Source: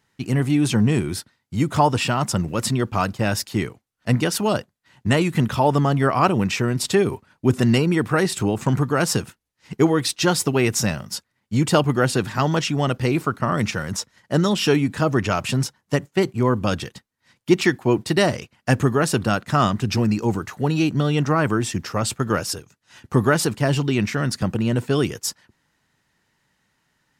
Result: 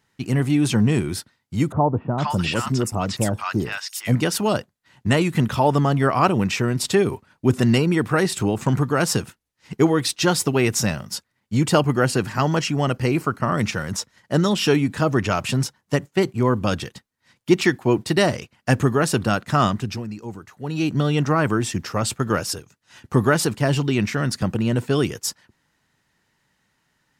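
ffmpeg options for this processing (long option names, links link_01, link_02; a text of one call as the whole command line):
ffmpeg -i in.wav -filter_complex "[0:a]asettb=1/sr,asplit=3[link_01][link_02][link_03];[link_01]atrim=end=1.724[link_04];[link_02]atrim=start=1.72:end=4.15,asetpts=PTS-STARTPTS,afade=type=in:duration=0.004:curve=qsin,afade=type=out:start_time=2.426:duration=0.004:curve=qsin,acrossover=split=1000|6000[link_05][link_06][link_07];[link_06]adelay=460[link_08];[link_07]adelay=580[link_09];[link_05][link_08][link_09]amix=inputs=3:normalize=0,atrim=end_sample=107163[link_10];[link_03]atrim=start=4.146[link_11];[link_04][link_10]acrossfade=duration=0.004:curve1=hsin:curve2=qsin[link_12];[link_12][link_11]acrossfade=duration=0.004:curve1=qsin:curve2=hsin,asettb=1/sr,asplit=3[link_13][link_14][link_15];[link_13]atrim=end=11.734[link_16];[link_14]atrim=start=11.73:end=13.59,asetpts=PTS-STARTPTS,afade=type=in:duration=0.004:curve=qsin,afade=type=out:start_time=1.856:duration=0.004:curve=qsin,bandreject=frequency=3600:width=6.1[link_17];[link_15]atrim=start=13.586[link_18];[link_16][link_17]acrossfade=duration=0.004:curve1=hsin:curve2=qsin[link_19];[link_19][link_18]acrossfade=duration=0.004:curve1=qsin:curve2=hsin,asplit=3[link_20][link_21][link_22];[link_20]atrim=end=20.03,asetpts=PTS-STARTPTS,afade=type=out:start_time=19.69:duration=0.34:silence=0.251189[link_23];[link_21]atrim=start=20.03:end=20.6,asetpts=PTS-STARTPTS,volume=-12dB[link_24];[link_22]atrim=start=20.6,asetpts=PTS-STARTPTS,afade=type=in:duration=0.34:silence=0.251189[link_25];[link_23][link_24][link_25]concat=n=3:v=0:a=1" out.wav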